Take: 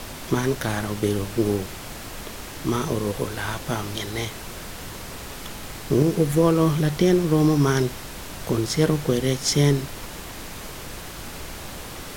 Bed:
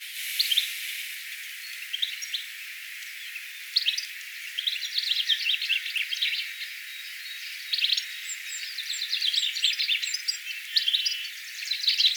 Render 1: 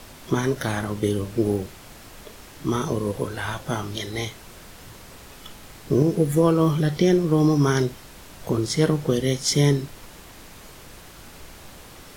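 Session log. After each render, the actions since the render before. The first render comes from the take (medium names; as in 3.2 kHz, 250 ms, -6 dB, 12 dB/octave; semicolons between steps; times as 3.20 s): noise print and reduce 8 dB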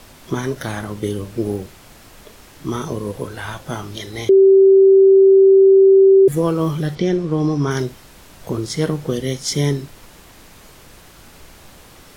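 4.29–6.28 s: bleep 387 Hz -6 dBFS; 6.95–7.71 s: distance through air 68 m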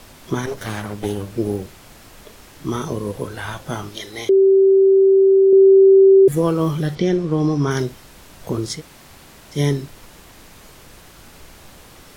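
0.46–1.30 s: comb filter that takes the minimum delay 10 ms; 3.89–5.53 s: peaking EQ 85 Hz -11.5 dB 2.8 oct; 8.77–9.56 s: room tone, crossfade 0.10 s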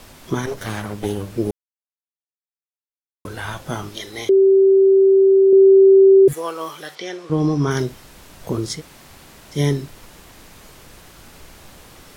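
1.51–3.25 s: mute; 6.33–7.30 s: high-pass 760 Hz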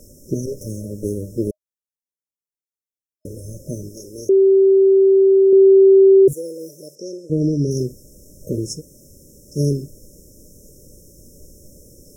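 FFT band-reject 620–5200 Hz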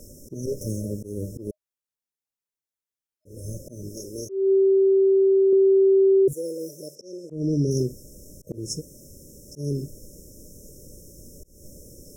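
compression 2.5:1, threshold -19 dBFS, peak gain reduction 7.5 dB; slow attack 229 ms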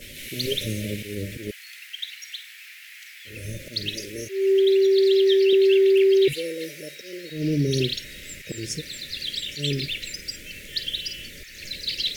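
add bed -5 dB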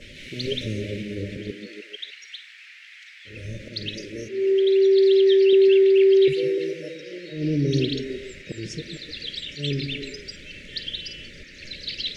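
distance through air 120 m; on a send: repeats whose band climbs or falls 150 ms, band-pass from 210 Hz, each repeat 0.7 oct, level -3 dB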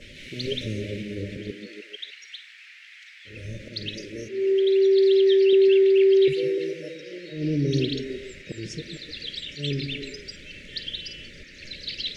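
trim -1.5 dB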